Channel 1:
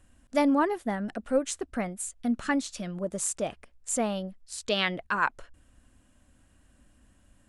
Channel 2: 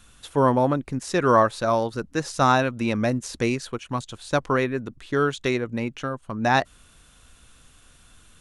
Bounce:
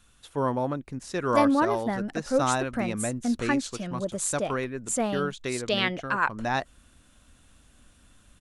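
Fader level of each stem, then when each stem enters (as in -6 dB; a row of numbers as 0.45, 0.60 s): +1.0, -7.5 dB; 1.00, 0.00 s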